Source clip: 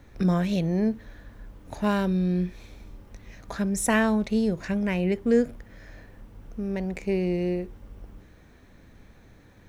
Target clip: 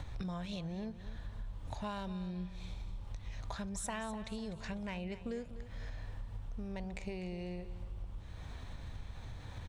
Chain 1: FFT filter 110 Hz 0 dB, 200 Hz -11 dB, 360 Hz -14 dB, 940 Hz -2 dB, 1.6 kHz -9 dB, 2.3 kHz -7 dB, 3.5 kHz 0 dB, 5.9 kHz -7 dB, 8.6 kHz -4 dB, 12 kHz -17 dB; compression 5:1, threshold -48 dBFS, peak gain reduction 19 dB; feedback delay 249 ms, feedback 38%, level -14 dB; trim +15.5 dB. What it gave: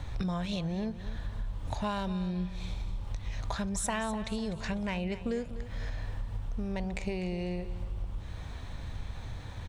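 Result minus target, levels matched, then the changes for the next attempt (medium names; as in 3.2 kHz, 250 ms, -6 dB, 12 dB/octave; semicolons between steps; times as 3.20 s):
compression: peak gain reduction -7.5 dB
change: compression 5:1, threshold -57.5 dBFS, peak gain reduction 27 dB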